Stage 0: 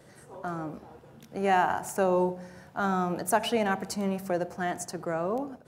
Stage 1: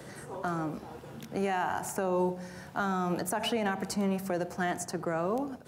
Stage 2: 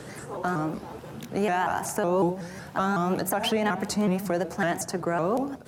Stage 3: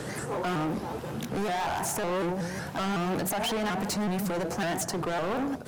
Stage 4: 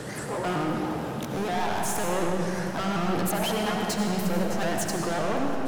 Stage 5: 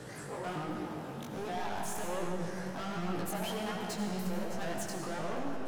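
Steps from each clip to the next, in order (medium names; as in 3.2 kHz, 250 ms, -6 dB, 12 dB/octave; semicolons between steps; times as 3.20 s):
peak limiter -20.5 dBFS, peak gain reduction 10 dB; peaking EQ 590 Hz -2.5 dB 0.78 oct; three bands compressed up and down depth 40%; trim +1 dB
vibrato with a chosen wave saw up 5.4 Hz, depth 160 cents; trim +5 dB
in parallel at -2 dB: peak limiter -25.5 dBFS, peak gain reduction 11.5 dB; on the sum: hard clipper -27 dBFS, distortion -6 dB
algorithmic reverb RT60 2.9 s, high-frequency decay 0.85×, pre-delay 45 ms, DRR 1.5 dB
chorus 1.3 Hz, delay 16.5 ms, depth 5.2 ms; trim -7 dB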